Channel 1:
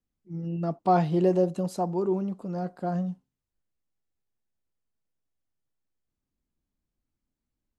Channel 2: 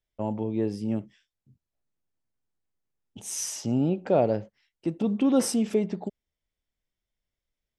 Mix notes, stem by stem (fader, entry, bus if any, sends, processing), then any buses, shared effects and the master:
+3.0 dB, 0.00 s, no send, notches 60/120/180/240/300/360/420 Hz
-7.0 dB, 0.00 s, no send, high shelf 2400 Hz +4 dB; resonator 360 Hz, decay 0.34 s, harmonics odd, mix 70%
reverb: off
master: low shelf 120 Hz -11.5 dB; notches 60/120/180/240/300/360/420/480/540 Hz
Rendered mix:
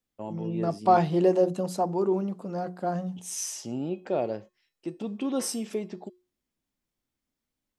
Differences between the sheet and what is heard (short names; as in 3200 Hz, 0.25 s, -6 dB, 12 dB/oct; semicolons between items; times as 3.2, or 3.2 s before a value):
stem 2 -7.0 dB -> +4.5 dB; master: missing notches 60/120/180/240/300/360/420/480/540 Hz